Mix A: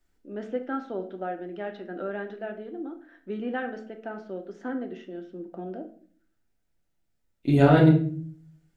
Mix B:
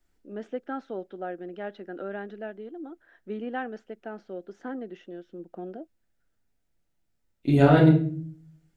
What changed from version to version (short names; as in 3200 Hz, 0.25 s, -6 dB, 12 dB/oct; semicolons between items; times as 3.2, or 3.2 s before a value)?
first voice: send off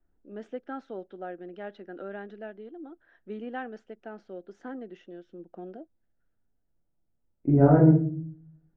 first voice -3.5 dB; second voice: add Gaussian blur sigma 7.1 samples